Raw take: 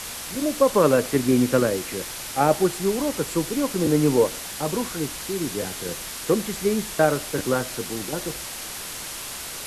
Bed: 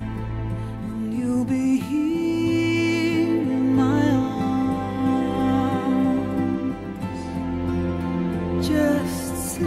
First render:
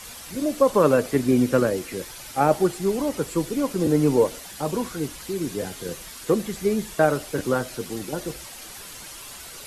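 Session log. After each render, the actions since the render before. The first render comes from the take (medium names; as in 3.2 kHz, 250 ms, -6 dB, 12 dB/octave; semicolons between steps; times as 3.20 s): noise reduction 9 dB, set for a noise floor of -35 dBFS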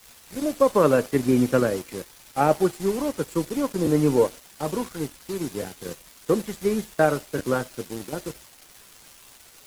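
crossover distortion -38.5 dBFS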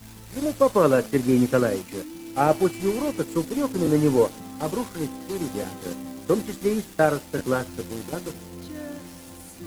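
add bed -16.5 dB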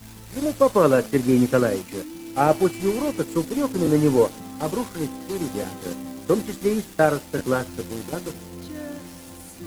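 trim +1.5 dB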